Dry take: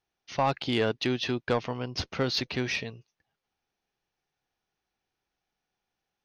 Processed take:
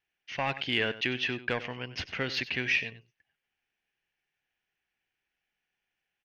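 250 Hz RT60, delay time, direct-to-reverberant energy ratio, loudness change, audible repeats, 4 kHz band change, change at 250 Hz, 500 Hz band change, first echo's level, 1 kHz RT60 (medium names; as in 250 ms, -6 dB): no reverb, 95 ms, no reverb, -1.5 dB, 1, -0.5 dB, -6.5 dB, -6.5 dB, -15.0 dB, no reverb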